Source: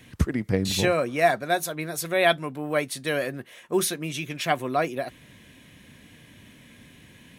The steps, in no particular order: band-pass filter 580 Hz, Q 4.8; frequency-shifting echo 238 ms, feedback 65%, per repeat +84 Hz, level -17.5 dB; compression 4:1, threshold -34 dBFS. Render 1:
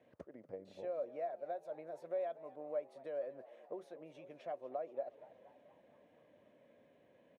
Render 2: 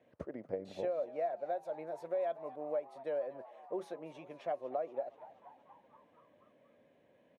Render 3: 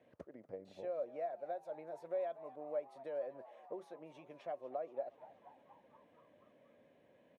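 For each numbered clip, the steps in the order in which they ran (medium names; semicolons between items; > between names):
compression > frequency-shifting echo > band-pass filter; band-pass filter > compression > frequency-shifting echo; compression > band-pass filter > frequency-shifting echo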